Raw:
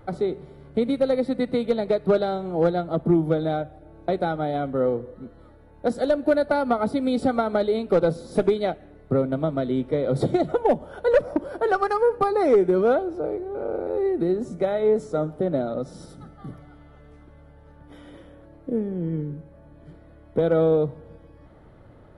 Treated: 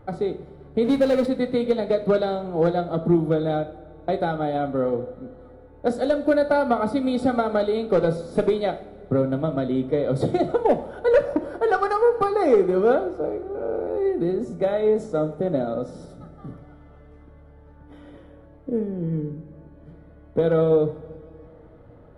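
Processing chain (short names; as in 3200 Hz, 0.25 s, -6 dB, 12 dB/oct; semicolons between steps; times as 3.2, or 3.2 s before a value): 0.84–1.26 power-law curve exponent 0.7; two-slope reverb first 0.47 s, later 3.5 s, from -18 dB, DRR 8 dB; mismatched tape noise reduction decoder only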